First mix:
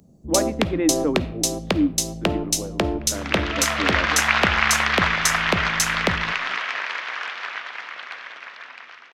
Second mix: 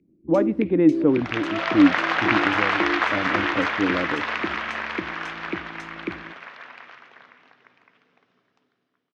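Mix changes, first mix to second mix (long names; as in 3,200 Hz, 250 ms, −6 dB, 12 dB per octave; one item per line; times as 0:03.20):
first sound: add pair of resonant band-passes 870 Hz, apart 2.8 octaves
second sound: entry −2.00 s
master: add spectral tilt −3 dB per octave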